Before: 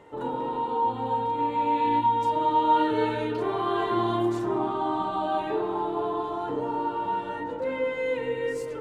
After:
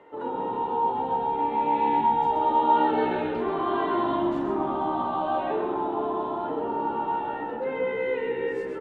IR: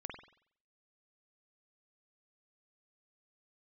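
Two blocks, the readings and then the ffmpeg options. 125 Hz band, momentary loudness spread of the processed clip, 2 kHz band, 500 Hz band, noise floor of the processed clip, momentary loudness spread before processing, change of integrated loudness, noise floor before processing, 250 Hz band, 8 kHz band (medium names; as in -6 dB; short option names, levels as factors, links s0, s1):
-4.5 dB, 7 LU, +0.5 dB, +0.5 dB, -33 dBFS, 7 LU, +0.5 dB, -34 dBFS, 0.0 dB, no reading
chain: -filter_complex "[0:a]acrossover=split=220 3400:gain=0.2 1 0.112[s0][s1][s2];[s0][s1][s2]amix=inputs=3:normalize=0,asplit=6[s3][s4][s5][s6][s7][s8];[s4]adelay=130,afreqshift=-68,volume=0.501[s9];[s5]adelay=260,afreqshift=-136,volume=0.2[s10];[s6]adelay=390,afreqshift=-204,volume=0.0804[s11];[s7]adelay=520,afreqshift=-272,volume=0.032[s12];[s8]adelay=650,afreqshift=-340,volume=0.0129[s13];[s3][s9][s10][s11][s12][s13]amix=inputs=6:normalize=0"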